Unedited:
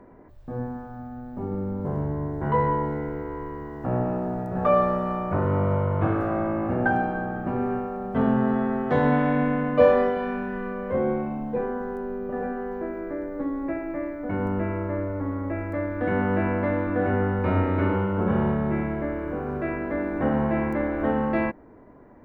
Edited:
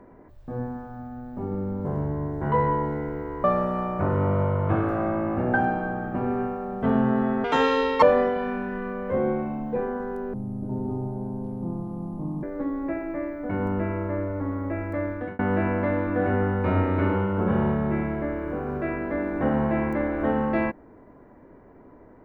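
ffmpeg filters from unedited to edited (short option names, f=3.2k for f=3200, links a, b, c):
-filter_complex "[0:a]asplit=7[a][b][c][d][e][f][g];[a]atrim=end=3.442[h];[b]atrim=start=4.758:end=8.764[i];[c]atrim=start=8.76:end=9.83,asetpts=PTS-STARTPTS,asetrate=80703,aresample=44100,atrim=end_sample=25785,asetpts=PTS-STARTPTS[j];[d]atrim=start=9.826:end=12.144[k];[e]atrim=start=12.14:end=13.23,asetpts=PTS-STARTPTS,asetrate=22932,aresample=44100,atrim=end_sample=92440,asetpts=PTS-STARTPTS[l];[f]atrim=start=13.226:end=16.19,asetpts=PTS-STARTPTS,afade=t=out:st=2.664:d=0.3[m];[g]atrim=start=16.19,asetpts=PTS-STARTPTS,afade=t=in:d=0.004:c=hsin[n];[h][i]acrossfade=d=0.004:c1=hsin:c2=hsin[o];[o][j]acrossfade=d=0.004:c1=hsin:c2=hsin[p];[p][k]acrossfade=d=0.004:c1=hsin:c2=hsin[q];[q][l]acrossfade=d=0.004:c1=hsin:c2=hsin[r];[m][n]concat=n=2:v=0:a=1[s];[r][s]acrossfade=d=0.004:c1=hsin:c2=hsin"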